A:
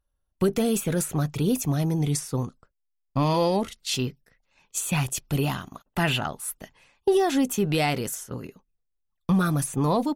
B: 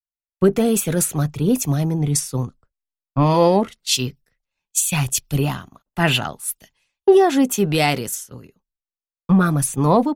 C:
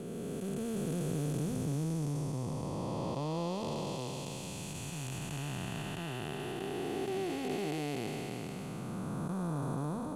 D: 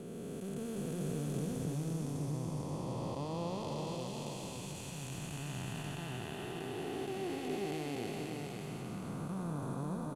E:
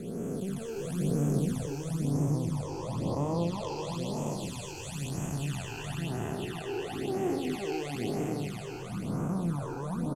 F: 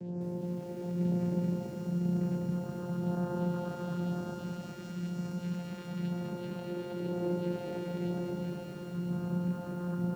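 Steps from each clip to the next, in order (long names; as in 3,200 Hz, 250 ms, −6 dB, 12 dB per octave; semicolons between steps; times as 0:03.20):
multiband upward and downward expander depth 100%; level +5.5 dB
spectrum smeared in time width 1,340 ms; high-shelf EQ 12,000 Hz −11 dB; level −8.5 dB
single-tap delay 535 ms −4.5 dB; level −4 dB
double-tracking delay 35 ms −10.5 dB; all-pass phaser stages 12, 1 Hz, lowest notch 190–4,100 Hz; level +7.5 dB
loose part that buzzes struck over −26 dBFS, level −35 dBFS; channel vocoder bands 8, saw 176 Hz; feedback echo at a low word length 201 ms, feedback 80%, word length 10 bits, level −4.5 dB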